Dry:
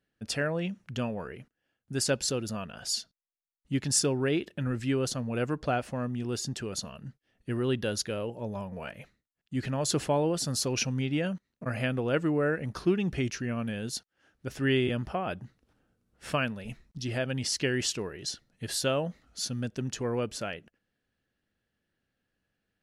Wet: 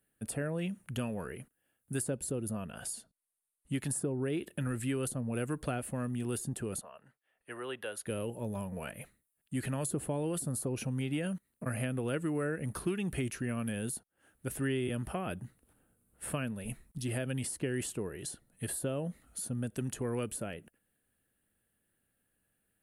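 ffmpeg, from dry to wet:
-filter_complex "[0:a]asettb=1/sr,asplit=3[a][b][c];[a]atrim=end=2.854[d];[b]atrim=start=2.85:end=3.79,asetpts=PTS-STARTPTS,afade=t=in:d=0.004:c=qsin,afade=t=out:st=0.936:d=0.004:c=qsin,lowpass=11k[e];[c]atrim=start=3.786[f];[d][e]acrossfade=d=0.004:c1=hsin:c2=qsin[g];[g][f]acrossfade=d=0.004:c1=qsin:c2=hsin,asettb=1/sr,asplit=3[h][i][j];[h]atrim=end=6.814[k];[i]atrim=start=6.81:end=8.06,asetpts=PTS-STARTPTS,afade=t=in:d=0.004:c=qsin,afade=t=out:st=1.246:d=0.004:c=qsin,acrossover=split=510 3200:gain=0.0631 1 0.2[l][m][n];[l][m][n]amix=inputs=3:normalize=0[o];[j]atrim=start=8.056[p];[k][o]acrossfade=d=0.004:c1=hsin:c2=qsin[q];[q][p]acrossfade=d=0.004:c1=qsin:c2=hsin,highshelf=f=7.4k:t=q:w=3:g=11.5,acrossover=split=490|1200[r][s][t];[r]acompressor=threshold=-32dB:ratio=4[u];[s]acompressor=threshold=-47dB:ratio=4[v];[t]acompressor=threshold=-41dB:ratio=4[w];[u][v][w]amix=inputs=3:normalize=0"

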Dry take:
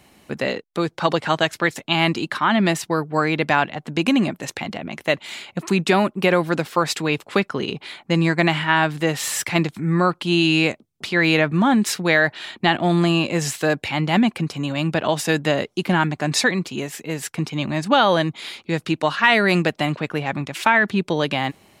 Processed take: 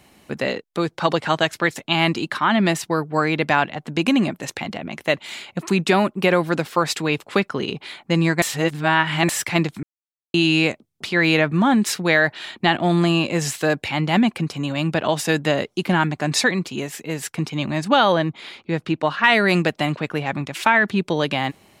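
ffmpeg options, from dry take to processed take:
-filter_complex "[0:a]asettb=1/sr,asplit=3[a][b][c];[a]atrim=end=18.124[d];[b]atrim=start=18.12:end=19.24,asetpts=PTS-STARTPTS,afade=t=in:d=0.004:c=qsin,afade=t=out:st=1.116:d=0.004:c=qsin,lowpass=f=2.4k:p=1[e];[c]atrim=start=19.236[f];[d][e]acrossfade=d=0.004:c1=hsin:c2=qsin[g];[g][f]acrossfade=d=0.004:c1=qsin:c2=hsin,asplit=5[h][i][j][k][l];[h]atrim=end=8.422[m];[i]atrim=start=8.418:end=9.292,asetpts=PTS-STARTPTS,areverse[n];[j]atrim=start=9.288:end=9.83,asetpts=PTS-STARTPTS,afade=t=out:st=0.538:d=0.004:c=hsin[o];[k]atrim=start=9.83:end=10.34,asetpts=PTS-STARTPTS,volume=0[p];[l]atrim=start=10.34,asetpts=PTS-STARTPTS,afade=t=in:d=0.004:c=hsin[q];[m][n]acrossfade=d=0.004:c1=hsin:c2=hsin[r];[o][p][q]concat=n=3:v=0:a=1[s];[r][s]acrossfade=d=0.004:c1=hsin:c2=hsin"

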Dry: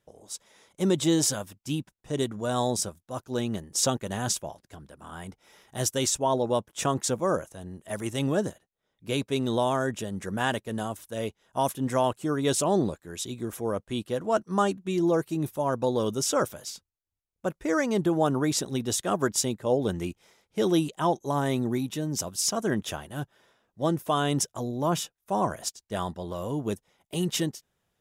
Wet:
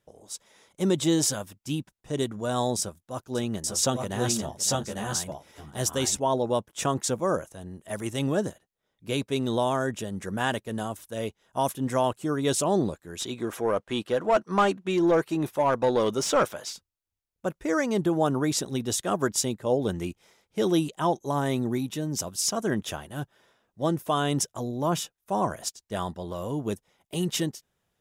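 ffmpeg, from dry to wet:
-filter_complex "[0:a]asettb=1/sr,asplit=3[a][b][c];[a]atrim=end=2.794[d];[b]atrim=start=2.79:end=6.2,asetpts=PTS-STARTPTS,afade=t=in:d=0.004:c=qsin,afade=t=out:st=3.406:d=0.004:c=qsin,aecho=1:1:558|848|862:0.158|0.708|0.631,atrim=end_sample=150381[e];[c]atrim=start=6.196[f];[d][e]acrossfade=d=0.004:c1=hsin:c2=qsin[g];[g][f]acrossfade=d=0.004:c1=qsin:c2=hsin,asplit=3[h][i][j];[h]afade=t=out:st=13.19:d=0.02[k];[i]asplit=2[l][m];[m]highpass=f=720:p=1,volume=15dB,asoftclip=type=tanh:threshold=-12dB[n];[l][n]amix=inputs=2:normalize=0,lowpass=f=2.4k:p=1,volume=-6dB,afade=t=in:st=13.19:d=0.02,afade=t=out:st=16.72:d=0.02[o];[j]afade=t=in:st=16.72:d=0.02[p];[k][o][p]amix=inputs=3:normalize=0"

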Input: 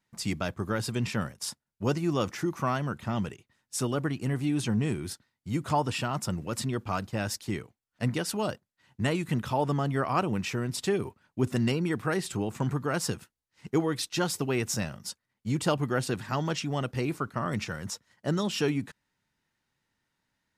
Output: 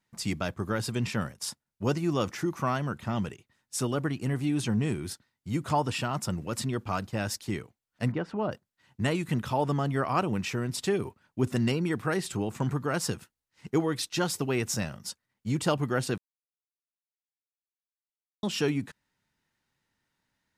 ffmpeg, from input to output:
-filter_complex "[0:a]asplit=3[a][b][c];[a]afade=t=out:st=8.11:d=0.02[d];[b]lowpass=1.6k,afade=t=in:st=8.11:d=0.02,afade=t=out:st=8.51:d=0.02[e];[c]afade=t=in:st=8.51:d=0.02[f];[d][e][f]amix=inputs=3:normalize=0,asplit=3[g][h][i];[g]atrim=end=16.18,asetpts=PTS-STARTPTS,afade=t=out:st=16.176:d=0.004:c=hsin[j];[h]atrim=start=16.18:end=18.43,asetpts=PTS-STARTPTS,volume=0[k];[i]atrim=start=18.43,asetpts=PTS-STARTPTS,afade=t=in:d=0.004:c=hsin[l];[j][k][l]concat=n=3:v=0:a=1"

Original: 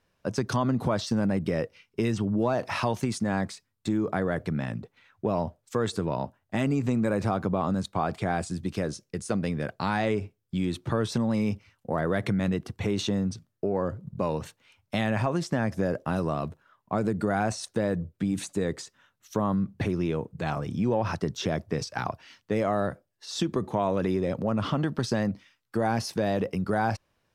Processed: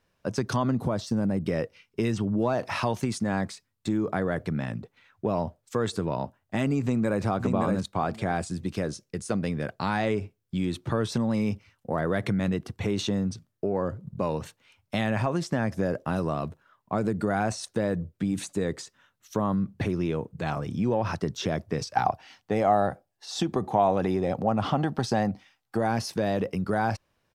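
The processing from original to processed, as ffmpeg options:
-filter_complex "[0:a]asettb=1/sr,asplit=3[a][b][c];[a]atrim=end=0.774[d];[b]atrim=start=0.77:end=1.46,asetpts=PTS-STARTPTS,afade=t=in:d=0.004:c=qsin,afade=t=out:st=0.686:d=0.004:c=qsin,equalizer=f=2.4k:t=o:w=2.9:g=-7[e];[c]atrim=start=1.456[f];[d][e]acrossfade=d=0.004:c1=hsin:c2=qsin[g];[g][f]acrossfade=d=0.004:c1=qsin:c2=hsin,asplit=2[h][i];[i]afade=t=in:st=6.82:d=0.01,afade=t=out:st=7.23:d=0.01,aecho=0:1:570|1140|1710:0.630957|0.0946436|0.0141965[j];[h][j]amix=inputs=2:normalize=0,asettb=1/sr,asplit=3[k][l][m];[k]atrim=end=21.954[n];[l]atrim=start=21.95:end=25.79,asetpts=PTS-STARTPTS,afade=t=in:d=0.004:c=qsin,afade=t=out:st=3.836:d=0.004:c=qsin,equalizer=f=770:w=4.9:g=14[o];[m]atrim=start=25.786[p];[n][o]acrossfade=d=0.004:c1=hsin:c2=qsin[q];[q][p]acrossfade=d=0.004:c1=qsin:c2=hsin"

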